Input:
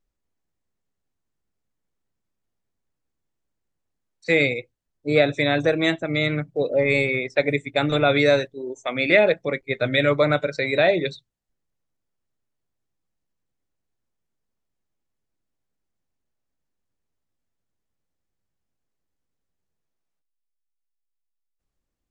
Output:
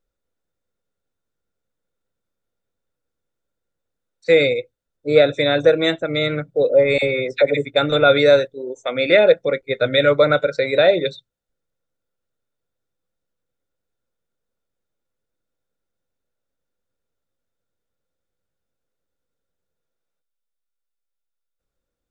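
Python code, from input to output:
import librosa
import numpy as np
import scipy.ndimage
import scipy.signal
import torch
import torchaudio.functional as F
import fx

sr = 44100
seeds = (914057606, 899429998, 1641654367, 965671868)

y = fx.small_body(x, sr, hz=(510.0, 1400.0, 3600.0), ring_ms=25, db=11)
y = fx.dispersion(y, sr, late='lows', ms=49.0, hz=1100.0, at=(6.98, 7.65))
y = F.gain(torch.from_numpy(y), -1.0).numpy()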